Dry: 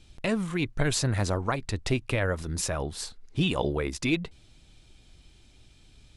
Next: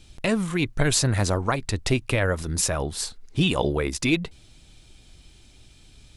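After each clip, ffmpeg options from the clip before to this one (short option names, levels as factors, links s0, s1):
-af "highshelf=f=6800:g=6,volume=1.58"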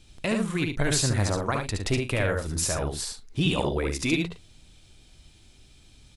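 -af "aecho=1:1:58|71|112:0.2|0.631|0.168,volume=0.631"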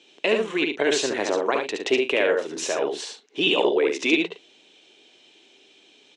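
-af "highpass=f=300:w=0.5412,highpass=f=300:w=1.3066,equalizer=f=420:t=q:w=4:g=7,equalizer=f=1300:t=q:w=4:g=-6,equalizer=f=2900:t=q:w=4:g=6,equalizer=f=4800:t=q:w=4:g=-9,lowpass=f=6000:w=0.5412,lowpass=f=6000:w=1.3066,volume=1.78"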